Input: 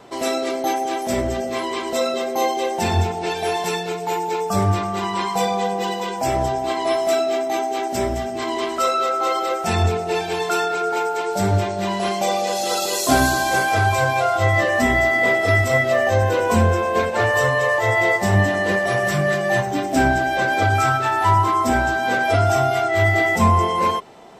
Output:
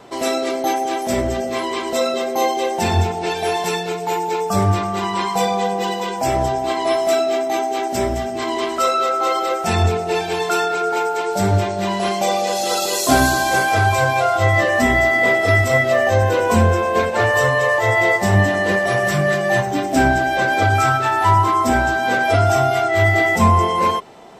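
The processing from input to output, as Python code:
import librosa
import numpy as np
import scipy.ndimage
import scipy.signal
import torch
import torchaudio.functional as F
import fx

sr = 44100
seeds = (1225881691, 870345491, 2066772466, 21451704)

y = np.clip(x, -10.0 ** (-4.5 / 20.0), 10.0 ** (-4.5 / 20.0))
y = y * 10.0 ** (2.0 / 20.0)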